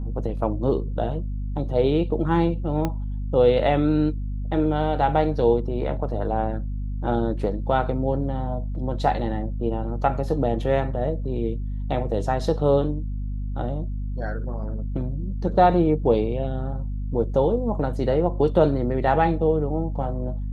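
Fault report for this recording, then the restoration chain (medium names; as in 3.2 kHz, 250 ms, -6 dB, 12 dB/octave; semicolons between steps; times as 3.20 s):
hum 50 Hz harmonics 5 -28 dBFS
2.85 s: pop -12 dBFS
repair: de-click; de-hum 50 Hz, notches 5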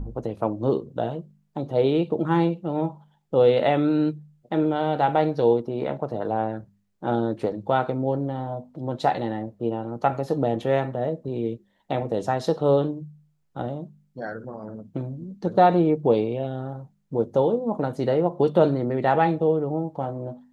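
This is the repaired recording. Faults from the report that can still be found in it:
2.85 s: pop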